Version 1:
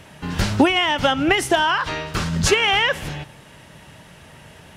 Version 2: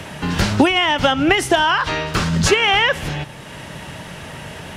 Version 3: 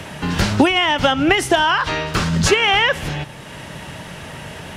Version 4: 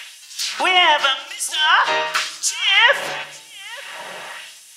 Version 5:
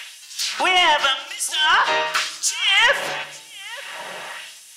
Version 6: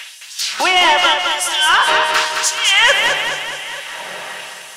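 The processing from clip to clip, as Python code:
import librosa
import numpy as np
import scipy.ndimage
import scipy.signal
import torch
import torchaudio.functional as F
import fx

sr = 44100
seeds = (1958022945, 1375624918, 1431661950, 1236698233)

y1 = fx.high_shelf(x, sr, hz=11000.0, db=-5.0)
y1 = fx.band_squash(y1, sr, depth_pct=40)
y1 = F.gain(torch.from_numpy(y1), 3.0).numpy()
y2 = y1
y3 = fx.filter_lfo_highpass(y2, sr, shape='sine', hz=0.91, low_hz=540.0, high_hz=6800.0, q=1.1)
y3 = y3 + 10.0 ** (-22.0 / 20.0) * np.pad(y3, (int(885 * sr / 1000.0), 0))[:len(y3)]
y3 = fx.room_shoebox(y3, sr, seeds[0], volume_m3=2700.0, walls='furnished', distance_m=1.1)
y3 = F.gain(torch.from_numpy(y3), 2.0).numpy()
y4 = 10.0 ** (-8.0 / 20.0) * np.tanh(y3 / 10.0 ** (-8.0 / 20.0))
y5 = fx.echo_feedback(y4, sr, ms=212, feedback_pct=55, wet_db=-5.0)
y5 = F.gain(torch.from_numpy(y5), 3.5).numpy()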